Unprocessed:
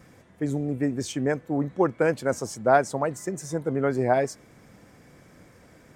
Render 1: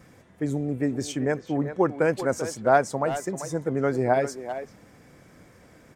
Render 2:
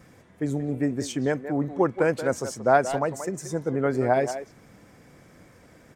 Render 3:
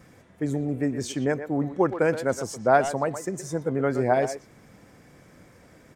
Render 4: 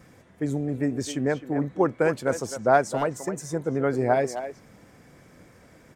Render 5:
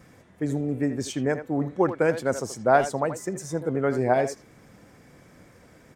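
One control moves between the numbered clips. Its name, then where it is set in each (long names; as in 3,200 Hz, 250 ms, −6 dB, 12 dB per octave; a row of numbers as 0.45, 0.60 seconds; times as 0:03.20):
far-end echo of a speakerphone, delay time: 390, 180, 120, 260, 80 milliseconds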